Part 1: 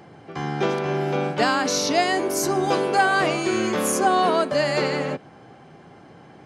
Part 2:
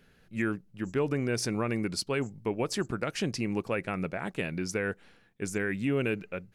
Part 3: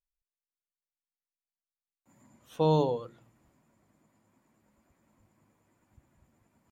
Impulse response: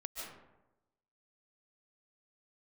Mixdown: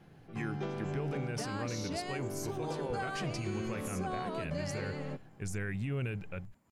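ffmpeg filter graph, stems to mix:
-filter_complex "[0:a]equalizer=f=120:t=o:w=2.1:g=11,volume=0.133[s0];[1:a]asubboost=boost=8.5:cutoff=100,volume=0.596[s1];[2:a]alimiter=limit=0.112:level=0:latency=1,volume=0.794[s2];[s1][s2]amix=inputs=2:normalize=0,alimiter=level_in=1.68:limit=0.0631:level=0:latency=1:release=16,volume=0.596,volume=1[s3];[s0][s3]amix=inputs=2:normalize=0,alimiter=level_in=1.41:limit=0.0631:level=0:latency=1:release=134,volume=0.708"

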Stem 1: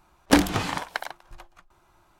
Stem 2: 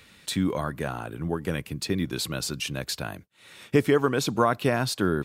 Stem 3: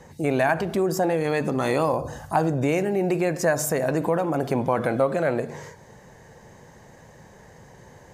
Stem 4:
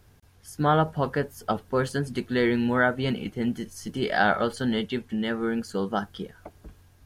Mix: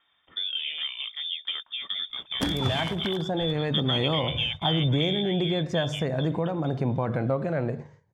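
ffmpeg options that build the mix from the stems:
-filter_complex "[0:a]adelay=2100,volume=0.473[s0];[1:a]equalizer=f=550:t=o:w=0.3:g=12.5,volume=0.668[s1];[2:a]agate=range=0.355:threshold=0.0112:ratio=16:detection=peak,lowpass=4200,adelay=2300,volume=0.422[s2];[3:a]alimiter=limit=0.168:level=0:latency=1:release=249,volume=0.398[s3];[s1][s3]amix=inputs=2:normalize=0,lowpass=f=3100:t=q:w=0.5098,lowpass=f=3100:t=q:w=0.6013,lowpass=f=3100:t=q:w=0.9,lowpass=f=3100:t=q:w=2.563,afreqshift=-3700,acompressor=threshold=0.0355:ratio=2.5,volume=1[s4];[s0][s2]amix=inputs=2:normalize=0,equalizer=f=110:w=0.68:g=12.5,alimiter=limit=0.188:level=0:latency=1:release=424,volume=1[s5];[s4][s5]amix=inputs=2:normalize=0,agate=range=0.251:threshold=0.0178:ratio=16:detection=peak"

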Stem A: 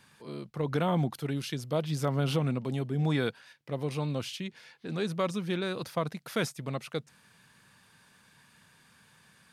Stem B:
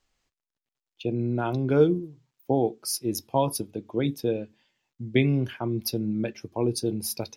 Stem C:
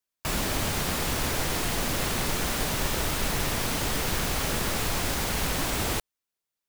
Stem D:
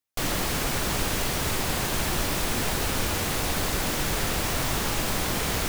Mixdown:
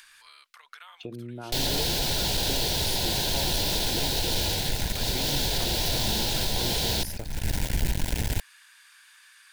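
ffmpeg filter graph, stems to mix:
-filter_complex "[0:a]acompressor=threshold=0.0158:ratio=6,highpass=f=1300:w=0.5412,highpass=f=1300:w=1.3066,acompressor=mode=upward:threshold=0.00316:ratio=2.5,volume=1.41[s0];[1:a]volume=0.708,asplit=2[s1][s2];[2:a]asubboost=boost=7:cutoff=130,acrusher=bits=2:mix=0:aa=0.5,adelay=2400,volume=1.06[s3];[3:a]equalizer=f=250:t=o:w=1:g=-5,equalizer=f=2000:t=o:w=1:g=-9,equalizer=f=4000:t=o:w=1:g=11,equalizer=f=8000:t=o:w=1:g=-4,asoftclip=type=tanh:threshold=0.0891,adelay=1350,volume=1.26[s4];[s2]apad=whole_len=400634[s5];[s3][s5]sidechaincompress=threshold=0.00282:ratio=6:attack=11:release=271[s6];[s6][s4]amix=inputs=2:normalize=0,asuperstop=centerf=1200:order=4:qfactor=2.7,alimiter=limit=0.133:level=0:latency=1:release=146,volume=1[s7];[s0][s1]amix=inputs=2:normalize=0,acompressor=threshold=0.0158:ratio=4,volume=1[s8];[s7][s8]amix=inputs=2:normalize=0"

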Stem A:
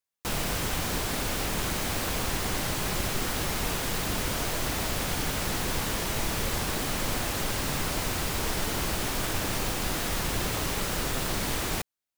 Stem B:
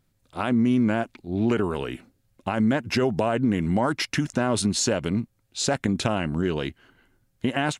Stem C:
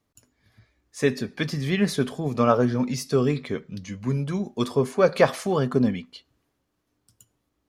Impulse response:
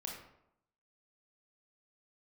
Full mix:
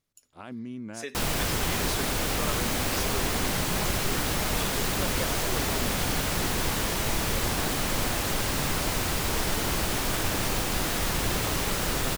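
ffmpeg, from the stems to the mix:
-filter_complex "[0:a]adelay=900,volume=1.26[s0];[1:a]volume=0.158[s1];[2:a]highpass=570,equalizer=f=910:w=0.55:g=-11,volume=0.944[s2];[s1][s2]amix=inputs=2:normalize=0,acompressor=threshold=0.0251:ratio=6,volume=1[s3];[s0][s3]amix=inputs=2:normalize=0"

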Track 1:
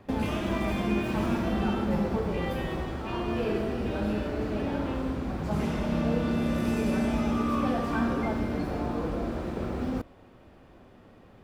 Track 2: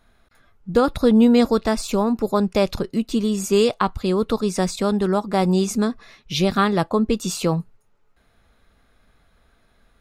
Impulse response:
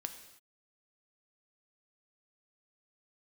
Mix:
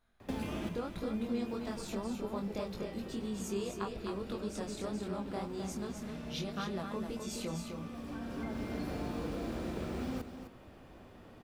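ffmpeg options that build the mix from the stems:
-filter_complex "[0:a]acrossover=split=160|450|1900[s0][s1][s2][s3];[s0]acompressor=threshold=0.00708:ratio=4[s4];[s1]acompressor=threshold=0.0141:ratio=4[s5];[s2]acompressor=threshold=0.00501:ratio=4[s6];[s3]acompressor=threshold=0.00251:ratio=4[s7];[s4][s5][s6][s7]amix=inputs=4:normalize=0,highshelf=f=4000:g=5.5,adelay=200,volume=0.841,asplit=2[s8][s9];[s9]volume=0.316[s10];[1:a]acompressor=threshold=0.0891:ratio=4,flanger=delay=18.5:depth=7:speed=1.8,volume=0.251,asplit=3[s11][s12][s13];[s12]volume=0.501[s14];[s13]apad=whole_len=513099[s15];[s8][s15]sidechaincompress=threshold=0.00316:ratio=8:attack=16:release=1070[s16];[s10][s14]amix=inputs=2:normalize=0,aecho=0:1:257:1[s17];[s16][s11][s17]amix=inputs=3:normalize=0"

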